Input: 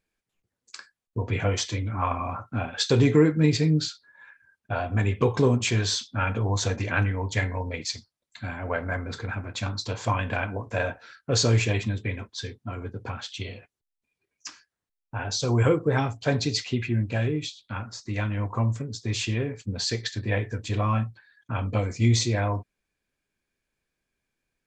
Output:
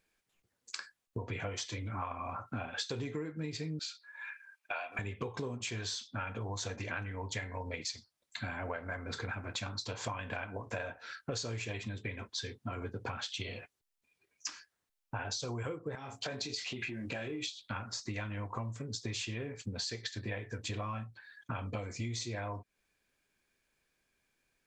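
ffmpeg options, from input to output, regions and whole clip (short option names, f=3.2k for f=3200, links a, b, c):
-filter_complex "[0:a]asettb=1/sr,asplit=3[a][b][c];[a]atrim=end=3.794[d];[b]atrim=start=3.79:end=4.99,asetpts=PTS-STARTPTS,afade=t=in:d=0.004:c=qsin,afade=t=out:st=1.196:d=0.004:c=qsin,highpass=760,equalizer=f=2.4k:w=6.3:g=11.5[e];[c]atrim=start=4.986[f];[d][e]acrossfade=d=0.004:c1=hsin:c2=qsin[g];[g][f]acrossfade=d=0.004:c1=qsin:c2=hsin,asettb=1/sr,asplit=3[h][i][j];[h]atrim=end=15.954[k];[i]atrim=start=15.95:end=17.48,asetpts=PTS-STARTPTS,afade=t=in:d=0.004:c=qsin,afade=t=out:st=1.526:d=0.004:c=qsin,asplit=2[l][m];[m]adelay=23,volume=-7dB[n];[l][n]amix=inputs=2:normalize=0,atrim=end_sample=67473,acompressor=threshold=-28dB:ratio=12:attack=3.2:release=140:knee=1:detection=peak,highpass=f=220:p=1[o];[j]atrim=start=17.476[p];[k][o]acrossfade=d=0.004:c1=hsin:c2=qsin[q];[q][p]acrossfade=d=0.004:c1=qsin:c2=hsin,lowshelf=f=370:g=-6,acompressor=threshold=-40dB:ratio=12,volume=4.5dB"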